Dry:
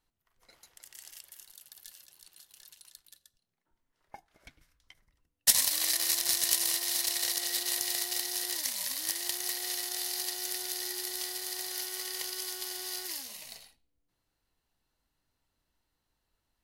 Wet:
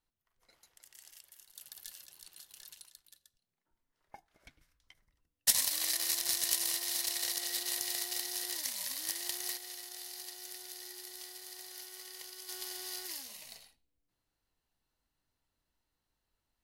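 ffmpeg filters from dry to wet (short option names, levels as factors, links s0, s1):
-af "asetnsamples=n=441:p=0,asendcmd='1.56 volume volume 2dB;2.85 volume volume -4dB;9.57 volume volume -11dB;12.49 volume volume -4dB',volume=0.473"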